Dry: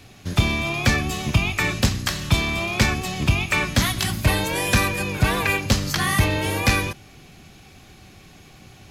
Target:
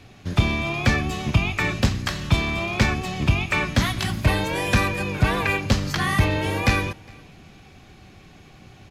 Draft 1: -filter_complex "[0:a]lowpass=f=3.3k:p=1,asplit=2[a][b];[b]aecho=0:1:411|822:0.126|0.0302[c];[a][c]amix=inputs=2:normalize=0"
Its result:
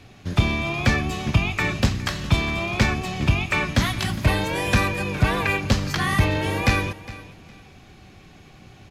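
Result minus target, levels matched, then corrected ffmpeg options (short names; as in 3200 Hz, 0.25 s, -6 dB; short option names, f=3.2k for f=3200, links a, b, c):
echo-to-direct +9.5 dB
-filter_complex "[0:a]lowpass=f=3.3k:p=1,asplit=2[a][b];[b]aecho=0:1:411|822:0.0422|0.0101[c];[a][c]amix=inputs=2:normalize=0"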